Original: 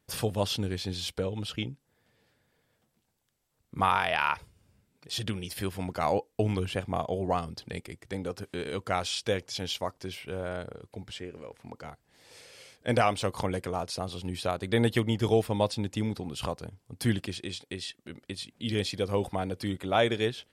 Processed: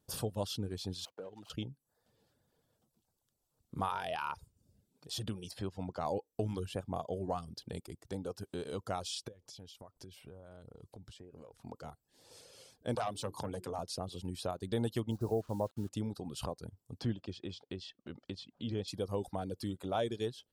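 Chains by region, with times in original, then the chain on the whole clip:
1.05–1.5 median filter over 25 samples + weighting filter A + compressor 1.5:1, threshold -48 dBFS
5.51–6.06 HPF 49 Hz + air absorption 90 m
9.28–11.63 low shelf 120 Hz +6.5 dB + compressor 20:1, threshold -44 dBFS
12.95–13.79 HPF 88 Hz 24 dB/oct + notches 60/120/180/240/300/360/420 Hz + core saturation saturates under 1200 Hz
15.11–15.89 LPF 1300 Hz 24 dB/oct + requantised 8-bit, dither none
16.99–18.88 air absorption 180 m + notch 3900 Hz, Q 25 + mismatched tape noise reduction encoder only
whole clip: reverb removal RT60 0.52 s; bell 2100 Hz -13 dB 0.88 oct; compressor 1.5:1, threshold -38 dBFS; gain -2 dB

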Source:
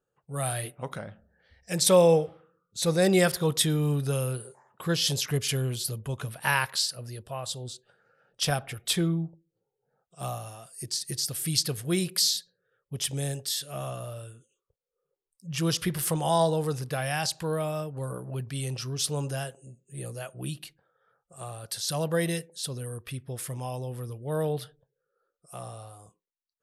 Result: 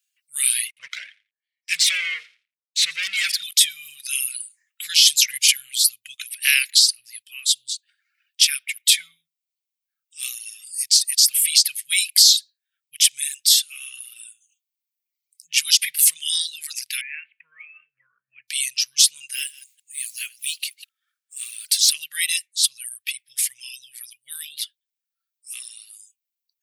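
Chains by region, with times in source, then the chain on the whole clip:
0.68–3.43 sample leveller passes 5 + band-pass 430 Hz, Q 0.69 + feedback echo 86 ms, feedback 19%, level -13 dB
17.01–18.48 steep low-pass 2500 Hz 72 dB/oct + resonator 220 Hz, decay 0.21 s, mix 50%
19.33–21.92 reverse delay 0.156 s, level -10 dB + modulation noise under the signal 24 dB
whole clip: reverb removal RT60 1.3 s; elliptic high-pass 2200 Hz, stop band 60 dB; maximiser +18 dB; gain -1 dB

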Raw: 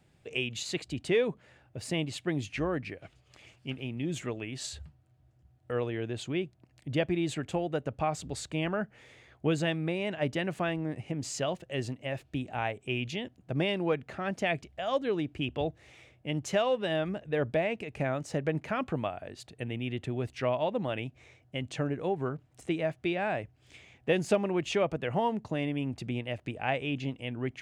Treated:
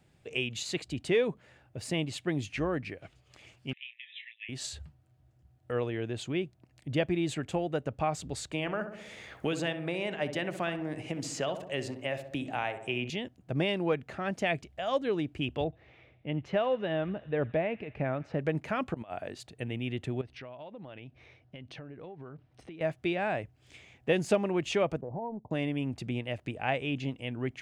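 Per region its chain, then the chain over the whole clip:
3.73–4.49 brick-wall FIR band-pass 1700–4000 Hz + doubler 26 ms -9 dB
8.52–13.1 low shelf 260 Hz -8.5 dB + darkening echo 65 ms, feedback 56%, low-pass 1400 Hz, level -9 dB + three-band squash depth 70%
15.64–18.39 air absorption 330 m + thin delay 84 ms, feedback 75%, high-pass 1400 Hz, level -19 dB
18.94–19.38 HPF 140 Hz 6 dB/oct + negative-ratio compressor -39 dBFS, ratio -0.5
20.21–22.81 compressor 8:1, threshold -42 dBFS + polynomial smoothing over 15 samples
25.01–25.51 G.711 law mismatch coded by A + steep low-pass 970 Hz 72 dB/oct + compressor 3:1, threshold -35 dBFS
whole clip: dry

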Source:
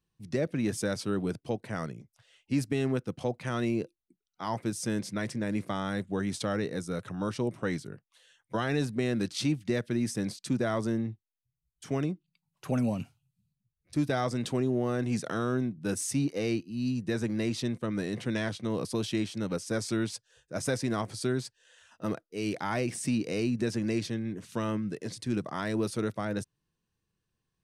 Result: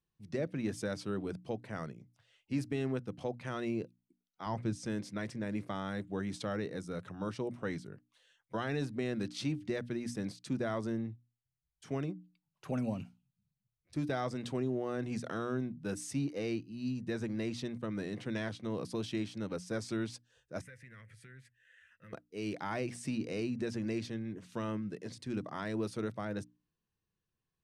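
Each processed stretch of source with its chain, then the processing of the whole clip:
4.46–4.86 LPF 7900 Hz + low shelf 150 Hz +11 dB
20.61–22.13 EQ curve 110 Hz 0 dB, 150 Hz -4 dB, 340 Hz -18 dB, 520 Hz -7 dB, 750 Hz -28 dB, 1900 Hz +10 dB, 4600 Hz -16 dB, 11000 Hz -3 dB + compressor 2.5:1, threshold -49 dBFS
whole clip: high shelf 7800 Hz -10 dB; notches 60/120/180/240/300 Hz; gain -5.5 dB

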